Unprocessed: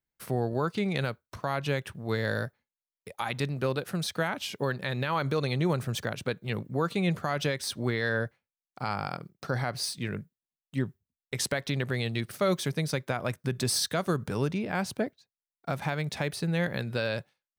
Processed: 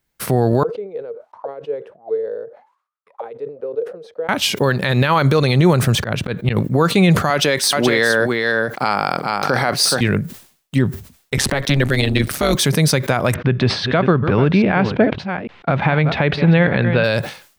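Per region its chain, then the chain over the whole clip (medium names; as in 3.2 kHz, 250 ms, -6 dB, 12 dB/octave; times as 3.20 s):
0.63–4.29 s: high-pass 270 Hz 6 dB/octave + auto-wah 460–1300 Hz, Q 15, down, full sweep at -31 dBFS
5.95–6.57 s: tone controls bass +3 dB, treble -8 dB + slow attack 130 ms
7.30–10.01 s: high-pass 230 Hz + delay 425 ms -6.5 dB
11.37–12.55 s: high-pass 48 Hz + AM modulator 140 Hz, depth 70% + three bands compressed up and down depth 70%
13.34–17.04 s: chunks repeated in reverse 427 ms, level -11.5 dB + low-pass 3.1 kHz 24 dB/octave
whole clip: loudness maximiser +21.5 dB; decay stretcher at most 120 dB/s; trim -4 dB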